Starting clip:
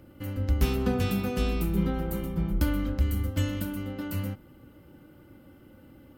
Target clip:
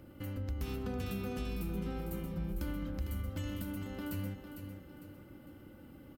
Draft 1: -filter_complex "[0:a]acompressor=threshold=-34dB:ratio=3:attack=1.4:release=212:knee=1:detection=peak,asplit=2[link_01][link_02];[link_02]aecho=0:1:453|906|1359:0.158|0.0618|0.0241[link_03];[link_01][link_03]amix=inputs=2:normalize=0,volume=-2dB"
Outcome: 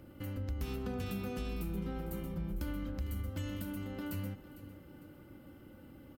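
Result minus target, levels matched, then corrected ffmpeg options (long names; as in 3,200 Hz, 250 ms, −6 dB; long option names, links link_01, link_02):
echo-to-direct −7 dB
-filter_complex "[0:a]acompressor=threshold=-34dB:ratio=3:attack=1.4:release=212:knee=1:detection=peak,asplit=2[link_01][link_02];[link_02]aecho=0:1:453|906|1359|1812:0.355|0.138|0.054|0.021[link_03];[link_01][link_03]amix=inputs=2:normalize=0,volume=-2dB"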